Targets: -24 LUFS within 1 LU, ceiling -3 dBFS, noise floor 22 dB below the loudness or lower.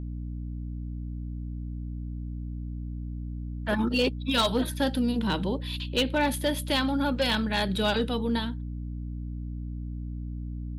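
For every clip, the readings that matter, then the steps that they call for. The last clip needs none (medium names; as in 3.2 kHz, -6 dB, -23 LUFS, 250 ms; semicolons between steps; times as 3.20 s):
clipped samples 0.3%; clipping level -18.0 dBFS; hum 60 Hz; highest harmonic 300 Hz; hum level -32 dBFS; loudness -29.5 LUFS; peak level -18.0 dBFS; loudness target -24.0 LUFS
-> clip repair -18 dBFS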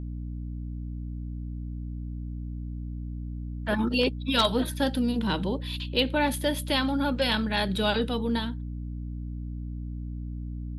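clipped samples 0.0%; hum 60 Hz; highest harmonic 720 Hz; hum level -32 dBFS
-> de-hum 60 Hz, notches 12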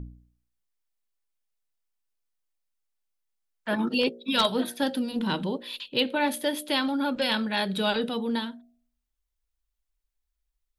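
hum not found; loudness -27.0 LUFS; peak level -9.0 dBFS; loudness target -24.0 LUFS
-> trim +3 dB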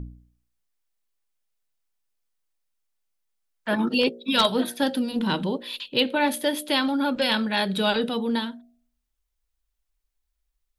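loudness -24.0 LUFS; peak level -6.0 dBFS; noise floor -79 dBFS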